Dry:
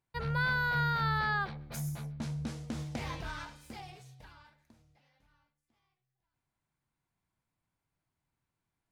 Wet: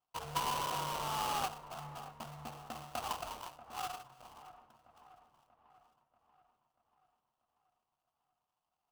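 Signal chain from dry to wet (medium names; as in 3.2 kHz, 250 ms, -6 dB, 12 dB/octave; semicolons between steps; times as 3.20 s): cascade formant filter a; sample-rate reducer 2 kHz, jitter 20%; feedback echo behind a low-pass 637 ms, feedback 56%, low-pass 1.7 kHz, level -15 dB; trim +12.5 dB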